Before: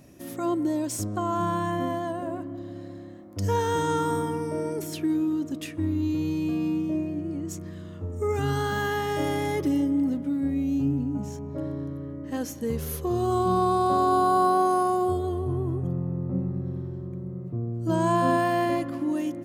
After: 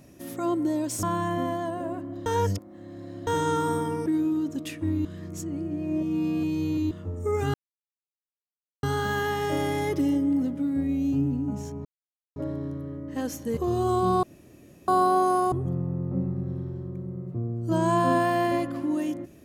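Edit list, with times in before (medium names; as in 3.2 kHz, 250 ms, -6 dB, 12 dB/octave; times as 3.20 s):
1.03–1.45 s: delete
2.68–3.69 s: reverse
4.48–5.02 s: delete
6.01–7.87 s: reverse
8.50 s: insert silence 1.29 s
11.52 s: insert silence 0.51 s
12.73–13.00 s: delete
13.66–14.31 s: room tone
14.95–15.70 s: delete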